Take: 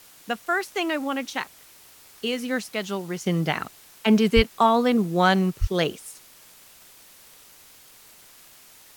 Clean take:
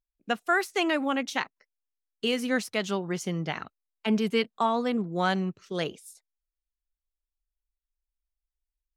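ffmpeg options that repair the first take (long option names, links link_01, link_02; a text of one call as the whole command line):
ffmpeg -i in.wav -filter_complex "[0:a]adeclick=threshold=4,asplit=3[link_01][link_02][link_03];[link_01]afade=type=out:start_time=4.35:duration=0.02[link_04];[link_02]highpass=frequency=140:width=0.5412,highpass=frequency=140:width=1.3066,afade=type=in:start_time=4.35:duration=0.02,afade=type=out:start_time=4.47:duration=0.02[link_05];[link_03]afade=type=in:start_time=4.47:duration=0.02[link_06];[link_04][link_05][link_06]amix=inputs=3:normalize=0,asplit=3[link_07][link_08][link_09];[link_07]afade=type=out:start_time=5.6:duration=0.02[link_10];[link_08]highpass=frequency=140:width=0.5412,highpass=frequency=140:width=1.3066,afade=type=in:start_time=5.6:duration=0.02,afade=type=out:start_time=5.72:duration=0.02[link_11];[link_09]afade=type=in:start_time=5.72:duration=0.02[link_12];[link_10][link_11][link_12]amix=inputs=3:normalize=0,afwtdn=0.0032,asetnsamples=nb_out_samples=441:pad=0,asendcmd='3.26 volume volume -7dB',volume=0dB" out.wav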